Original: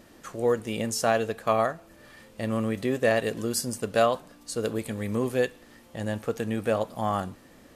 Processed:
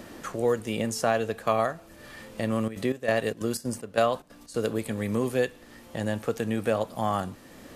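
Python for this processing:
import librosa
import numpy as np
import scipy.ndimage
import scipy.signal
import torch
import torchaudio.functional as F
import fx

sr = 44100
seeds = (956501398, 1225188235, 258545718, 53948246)

y = fx.step_gate(x, sr, bpm=185, pattern='.xx..xxx.xx', floor_db=-12.0, edge_ms=4.5, at=(2.55, 4.63), fade=0.02)
y = fx.band_squash(y, sr, depth_pct=40)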